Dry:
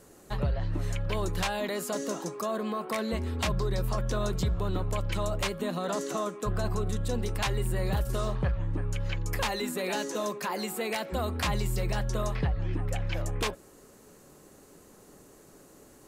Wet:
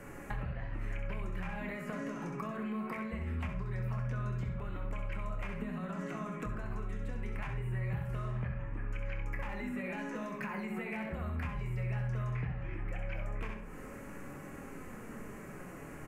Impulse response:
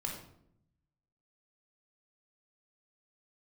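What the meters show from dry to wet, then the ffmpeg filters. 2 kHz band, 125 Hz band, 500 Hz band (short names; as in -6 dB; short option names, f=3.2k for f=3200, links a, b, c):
-6.0 dB, -5.5 dB, -12.0 dB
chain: -filter_complex "[0:a]firequalizer=gain_entry='entry(210,0);entry(380,-6);entry(1300,-1);entry(2900,-3)':delay=0.05:min_phase=1,aecho=1:1:65|130|195:0.447|0.0715|0.0114,acrossover=split=210|1600|4700[a][b][c][d];[a]acompressor=threshold=-34dB:ratio=4[e];[b]acompressor=threshold=-44dB:ratio=4[f];[c]acompressor=threshold=-51dB:ratio=4[g];[d]acompressor=threshold=-58dB:ratio=4[h];[e][f][g][h]amix=inputs=4:normalize=0,flanger=delay=3.5:depth=3.5:regen=72:speed=0.21:shape=sinusoidal,highshelf=f=3k:t=q:w=3:g=-9,acompressor=threshold=-51dB:ratio=6,asplit=2[i][j];[1:a]atrim=start_sample=2205,adelay=25[k];[j][k]afir=irnorm=-1:irlink=0,volume=-7.5dB[l];[i][l]amix=inputs=2:normalize=0,volume=13dB"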